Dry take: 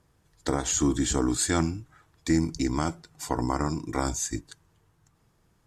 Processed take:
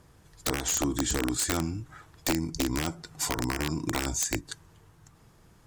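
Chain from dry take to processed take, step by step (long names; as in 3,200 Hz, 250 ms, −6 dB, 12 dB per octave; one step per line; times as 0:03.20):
downward compressor 12 to 1, threshold −33 dBFS, peak gain reduction 15 dB
wrap-around overflow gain 27 dB
level +8.5 dB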